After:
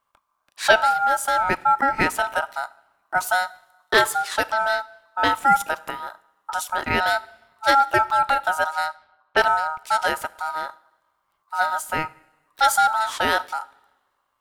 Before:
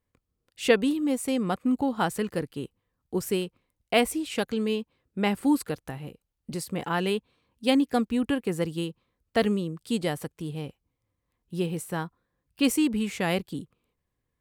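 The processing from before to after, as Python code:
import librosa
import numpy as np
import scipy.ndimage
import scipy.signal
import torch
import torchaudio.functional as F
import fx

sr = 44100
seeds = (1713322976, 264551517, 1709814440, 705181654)

p1 = fx.rev_double_slope(x, sr, seeds[0], early_s=0.62, late_s=1.7, knee_db=-16, drr_db=17.5)
p2 = fx.env_lowpass(p1, sr, base_hz=1600.0, full_db=-26.0, at=(8.64, 9.37), fade=0.02)
p3 = 10.0 ** (-19.0 / 20.0) * np.tanh(p2 / 10.0 ** (-19.0 / 20.0))
p4 = p2 + (p3 * 10.0 ** (-6.5 / 20.0))
p5 = p4 * np.sin(2.0 * np.pi * 1100.0 * np.arange(len(p4)) / sr)
y = p5 * 10.0 ** (5.5 / 20.0)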